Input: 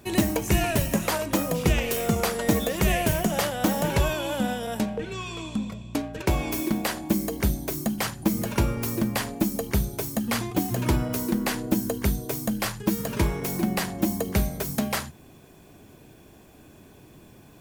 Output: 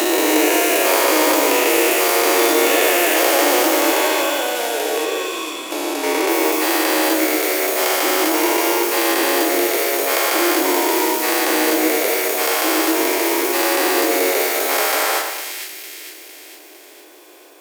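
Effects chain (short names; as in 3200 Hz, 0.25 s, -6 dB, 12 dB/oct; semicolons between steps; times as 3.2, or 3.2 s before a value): spectral dilation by 0.48 s; steep high-pass 310 Hz 72 dB/oct; split-band echo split 2000 Hz, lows 0.11 s, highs 0.455 s, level -7 dB; companded quantiser 6-bit; gain +2 dB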